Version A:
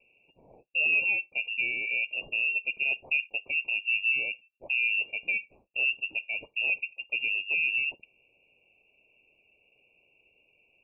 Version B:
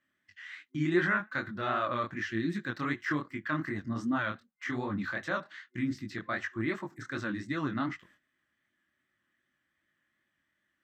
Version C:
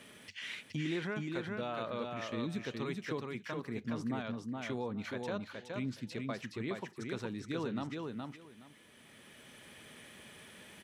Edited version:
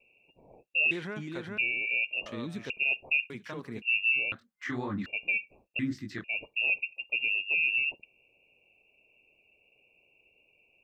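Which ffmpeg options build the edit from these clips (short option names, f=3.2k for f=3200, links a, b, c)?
-filter_complex "[2:a]asplit=3[a][b][c];[1:a]asplit=2[d][e];[0:a]asplit=6[f][g][h][i][j][k];[f]atrim=end=0.912[l];[a]atrim=start=0.908:end=1.582[m];[g]atrim=start=1.578:end=2.262[n];[b]atrim=start=2.258:end=2.702[o];[h]atrim=start=2.698:end=3.302[p];[c]atrim=start=3.298:end=3.822[q];[i]atrim=start=3.818:end=4.322[r];[d]atrim=start=4.318:end=5.062[s];[j]atrim=start=5.058:end=5.792[t];[e]atrim=start=5.788:end=6.242[u];[k]atrim=start=6.238[v];[l][m]acrossfade=d=0.004:c1=hsin:c2=hsin[w];[w][n]acrossfade=d=0.004:c1=hsin:c2=hsin[x];[x][o]acrossfade=d=0.004:c1=hsin:c2=hsin[y];[y][p]acrossfade=d=0.004:c1=hsin:c2=hsin[z];[z][q]acrossfade=d=0.004:c1=hsin:c2=hsin[aa];[aa][r]acrossfade=d=0.004:c1=hsin:c2=hsin[ab];[ab][s]acrossfade=d=0.004:c1=hsin:c2=hsin[ac];[ac][t]acrossfade=d=0.004:c1=hsin:c2=hsin[ad];[ad][u]acrossfade=d=0.004:c1=hsin:c2=hsin[ae];[ae][v]acrossfade=d=0.004:c1=hsin:c2=hsin"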